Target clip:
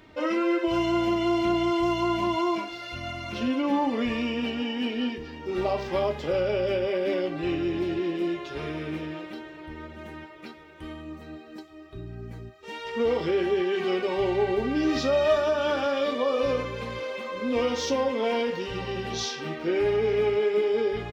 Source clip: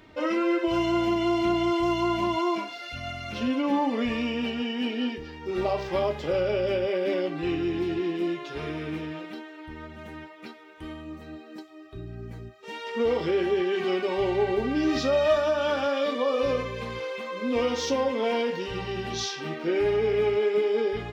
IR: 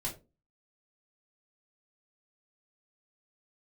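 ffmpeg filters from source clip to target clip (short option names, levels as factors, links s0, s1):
-filter_complex "[0:a]asplit=2[s0][s1];[s1]adelay=898,lowpass=f=2000:p=1,volume=0.0944,asplit=2[s2][s3];[s3]adelay=898,lowpass=f=2000:p=1,volume=0.52,asplit=2[s4][s5];[s5]adelay=898,lowpass=f=2000:p=1,volume=0.52,asplit=2[s6][s7];[s7]adelay=898,lowpass=f=2000:p=1,volume=0.52[s8];[s0][s2][s4][s6][s8]amix=inputs=5:normalize=0"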